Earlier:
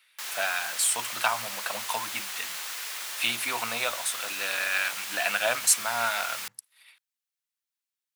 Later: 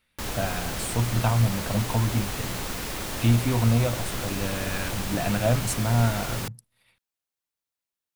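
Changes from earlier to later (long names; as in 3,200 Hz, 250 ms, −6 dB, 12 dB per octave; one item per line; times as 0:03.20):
speech −10.5 dB
master: remove high-pass filter 1,400 Hz 12 dB per octave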